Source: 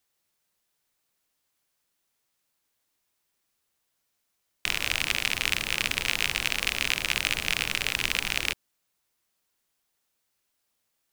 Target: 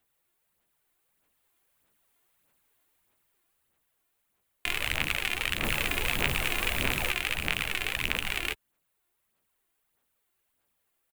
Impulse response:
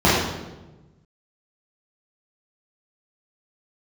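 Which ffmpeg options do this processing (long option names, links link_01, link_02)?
-filter_complex "[0:a]asettb=1/sr,asplit=3[link_01][link_02][link_03];[link_01]atrim=end=5.634[link_04];[link_02]atrim=start=5.63:end=7.11,asetpts=PTS-STARTPTS,afade=type=in:duration=0.004:curve=qsin,afade=type=out:start_time=1.476:duration=0.004:curve=qsin,aeval=exprs='val(0)+0.5*0.0316*sgn(val(0))':channel_layout=same[link_05];[link_03]atrim=start=7.106[link_06];[link_04][link_05]acrossfade=duration=0.004:curve1=hsin:curve2=qsin[link_07];[link_07][link_06]acrossfade=duration=0.004:curve1=qsin:curve2=hsin,aphaser=in_gain=1:out_gain=1:delay=2.9:decay=0.48:speed=1.6:type=sinusoidal,asplit=2[link_08][link_09];[link_09]alimiter=limit=-10.5dB:level=0:latency=1:release=185,volume=-1dB[link_10];[link_08][link_10]amix=inputs=2:normalize=0,dynaudnorm=framelen=130:gausssize=21:maxgain=4.5dB,equalizer=frequency=5400:width_type=o:width=1:gain=-11.5,asplit=2[link_11][link_12];[link_12]adelay=14,volume=-13dB[link_13];[link_11][link_13]amix=inputs=2:normalize=0,volume=-4dB"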